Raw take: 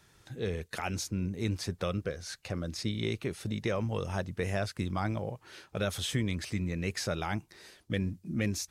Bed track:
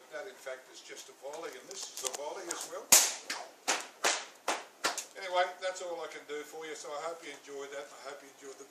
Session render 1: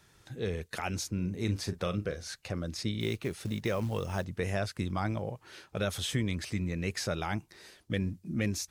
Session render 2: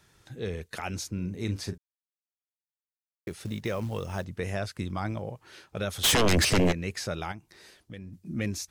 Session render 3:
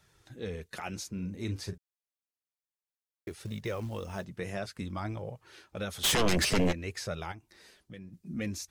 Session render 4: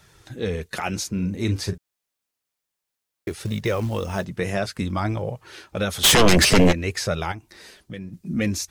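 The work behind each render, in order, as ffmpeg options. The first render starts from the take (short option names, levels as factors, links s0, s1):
-filter_complex "[0:a]asettb=1/sr,asplit=3[s0][s1][s2];[s0]atrim=end=1.144[s3];[s1]atrim=start=1.14:end=2.28,asetpts=PTS-STARTPTS,afade=t=in:d=0.004:c=qsin,afade=t=out:st=1.136:d=0.004:c=qsin,asplit=2[s4][s5];[s5]adelay=39,volume=0.282[s6];[s4][s6]amix=inputs=2:normalize=0,atrim=end_sample=50274[s7];[s2]atrim=start=2.276[s8];[s3][s7]acrossfade=d=0.004:c1=hsin:c2=qsin[s9];[s9][s8]acrossfade=d=0.004:c1=qsin:c2=hsin,asettb=1/sr,asplit=3[s10][s11][s12];[s10]atrim=end=3.004[s13];[s11]atrim=start=3:end=4.25,asetpts=PTS-STARTPTS,afade=t=in:d=0.004:c=qsin,afade=t=out:st=1.246:d=0.004:c=qsin,acrusher=bits=6:mode=log:mix=0:aa=0.000001[s14];[s12]atrim=start=4.246[s15];[s13][s14]acrossfade=d=0.004:c1=hsin:c2=qsin[s16];[s16][s15]acrossfade=d=0.004:c1=qsin:c2=hsin"
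-filter_complex "[0:a]asplit=3[s0][s1][s2];[s0]afade=t=out:st=6.03:d=0.02[s3];[s1]aeval=exprs='0.126*sin(PI/2*5.62*val(0)/0.126)':c=same,afade=t=in:st=6.03:d=0.02,afade=t=out:st=6.71:d=0.02[s4];[s2]afade=t=in:st=6.71:d=0.02[s5];[s3][s4][s5]amix=inputs=3:normalize=0,asplit=3[s6][s7][s8];[s6]afade=t=out:st=7.31:d=0.02[s9];[s7]acompressor=threshold=0.00447:ratio=2:attack=3.2:release=140:knee=1:detection=peak,afade=t=in:st=7.31:d=0.02,afade=t=out:st=8.12:d=0.02[s10];[s8]afade=t=in:st=8.12:d=0.02[s11];[s9][s10][s11]amix=inputs=3:normalize=0,asplit=3[s12][s13][s14];[s12]atrim=end=1.78,asetpts=PTS-STARTPTS,afade=t=out:st=1.776:d=0.004:c=hsin[s15];[s13]atrim=start=1.78:end=3.27,asetpts=PTS-STARTPTS,volume=0[s16];[s14]atrim=start=3.27,asetpts=PTS-STARTPTS,afade=t=in:d=0.004:c=hsin[s17];[s15][s16][s17]concat=n=3:v=0:a=1"
-af "flanger=delay=1.4:depth=4.7:regen=-43:speed=0.56:shape=triangular"
-af "volume=3.76"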